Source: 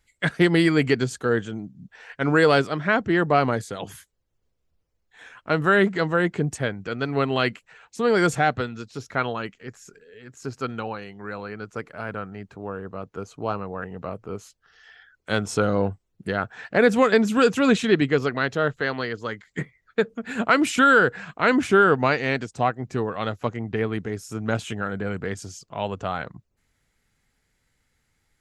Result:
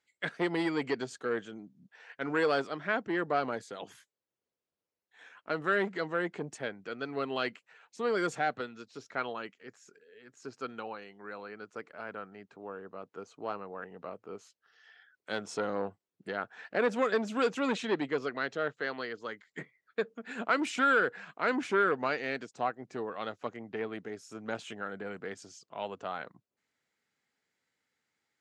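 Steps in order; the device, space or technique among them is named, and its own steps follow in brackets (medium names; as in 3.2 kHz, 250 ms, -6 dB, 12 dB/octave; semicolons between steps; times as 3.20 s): public-address speaker with an overloaded transformer (transformer saturation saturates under 700 Hz; band-pass 260–6900 Hz); trim -8.5 dB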